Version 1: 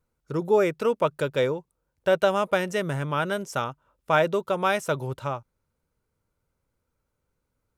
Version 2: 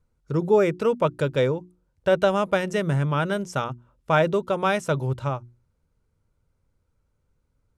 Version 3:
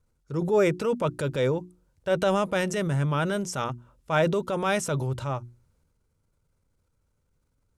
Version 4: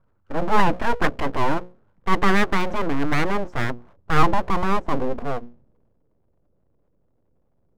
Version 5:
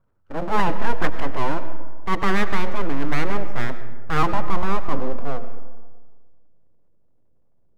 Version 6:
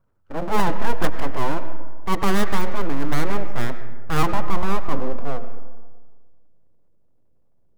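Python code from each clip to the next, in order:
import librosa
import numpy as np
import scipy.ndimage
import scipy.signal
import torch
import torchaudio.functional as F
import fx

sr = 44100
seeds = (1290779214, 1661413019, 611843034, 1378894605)

y1 = scipy.signal.sosfilt(scipy.signal.butter(2, 10000.0, 'lowpass', fs=sr, output='sos'), x)
y1 = fx.low_shelf(y1, sr, hz=200.0, db=11.0)
y1 = fx.hum_notches(y1, sr, base_hz=60, count=6)
y2 = fx.peak_eq(y1, sr, hz=8800.0, db=5.5, octaves=1.8)
y2 = fx.transient(y2, sr, attack_db=-6, sustain_db=5)
y2 = y2 * 10.0 ** (-2.0 / 20.0)
y3 = fx.filter_sweep_lowpass(y2, sr, from_hz=1200.0, to_hz=520.0, start_s=2.91, end_s=4.83, q=1.7)
y3 = np.abs(y3)
y3 = y3 * 10.0 ** (6.5 / 20.0)
y4 = fx.rev_freeverb(y3, sr, rt60_s=1.5, hf_ratio=0.45, predelay_ms=60, drr_db=11.0)
y4 = y4 * 10.0 ** (-3.0 / 20.0)
y5 = fx.tracing_dist(y4, sr, depth_ms=0.12)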